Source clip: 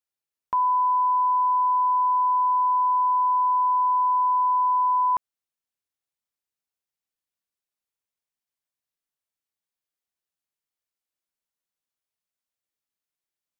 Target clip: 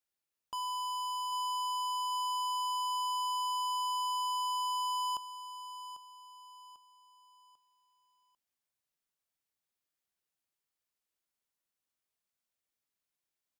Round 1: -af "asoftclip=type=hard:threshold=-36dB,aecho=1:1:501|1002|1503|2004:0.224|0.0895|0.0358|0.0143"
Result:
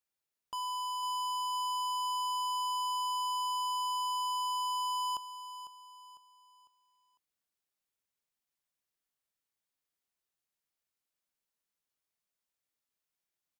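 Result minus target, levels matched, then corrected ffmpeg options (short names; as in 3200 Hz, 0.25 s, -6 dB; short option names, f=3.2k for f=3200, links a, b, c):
echo 0.294 s early
-af "asoftclip=type=hard:threshold=-36dB,aecho=1:1:795|1590|2385|3180:0.224|0.0895|0.0358|0.0143"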